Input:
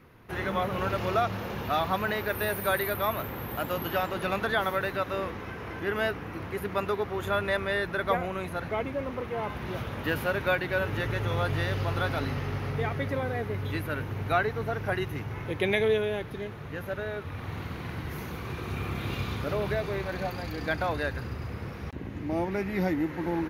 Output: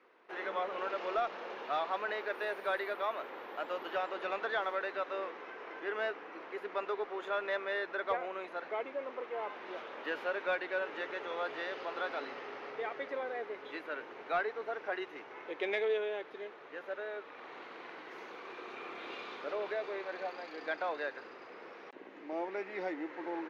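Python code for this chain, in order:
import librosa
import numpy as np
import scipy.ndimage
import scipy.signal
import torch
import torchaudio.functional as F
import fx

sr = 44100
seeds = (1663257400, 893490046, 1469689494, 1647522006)

y = scipy.signal.sosfilt(scipy.signal.butter(4, 370.0, 'highpass', fs=sr, output='sos'), x)
y = fx.cheby_harmonics(y, sr, harmonics=(5,), levels_db=(-25,), full_scale_db=-12.5)
y = fx.air_absorb(y, sr, metres=150.0)
y = F.gain(torch.from_numpy(y), -7.0).numpy()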